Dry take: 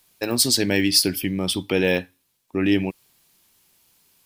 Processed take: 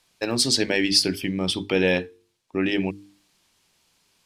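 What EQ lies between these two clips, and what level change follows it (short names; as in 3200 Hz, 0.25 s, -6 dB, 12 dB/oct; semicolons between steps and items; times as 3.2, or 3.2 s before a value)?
LPF 7100 Hz 12 dB/oct; notches 50/100/150/200/250/300/350 Hz; notches 50/100/150/200/250/300/350/400/450 Hz; 0.0 dB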